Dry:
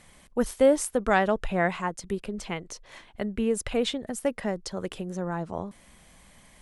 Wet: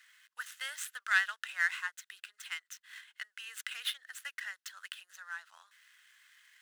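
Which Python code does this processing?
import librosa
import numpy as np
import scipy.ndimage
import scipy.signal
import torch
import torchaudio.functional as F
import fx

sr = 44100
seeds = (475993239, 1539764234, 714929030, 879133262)

y = scipy.ndimage.median_filter(x, 9, mode='constant')
y = scipy.signal.sosfilt(scipy.signal.cheby1(4, 1.0, 1500.0, 'highpass', fs=sr, output='sos'), y)
y = fx.notch(y, sr, hz=2300.0, q=8.3)
y = y * librosa.db_to_amplitude(2.5)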